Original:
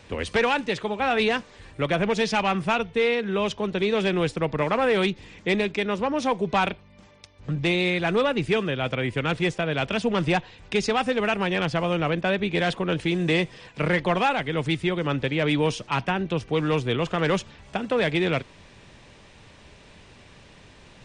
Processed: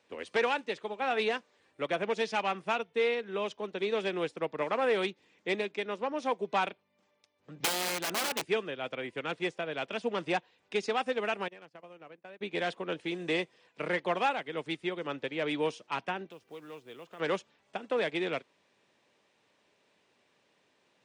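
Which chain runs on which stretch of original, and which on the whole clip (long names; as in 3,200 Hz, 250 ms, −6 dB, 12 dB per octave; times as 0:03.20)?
0:07.60–0:08.44: hum removal 123.2 Hz, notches 16 + wrap-around overflow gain 18.5 dB + multiband upward and downward compressor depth 100%
0:11.48–0:12.41: noise gate −25 dBFS, range −20 dB + parametric band 3,400 Hz −6.5 dB 0.31 octaves + downward compressor 16 to 1, threshold −30 dBFS
0:16.31–0:17.20: downward compressor 2 to 1, threshold −36 dBFS + log-companded quantiser 6 bits
whole clip: high-pass filter 360 Hz 12 dB per octave; low-shelf EQ 460 Hz +5.5 dB; expander for the loud parts 1.5 to 1, over −43 dBFS; level −6.5 dB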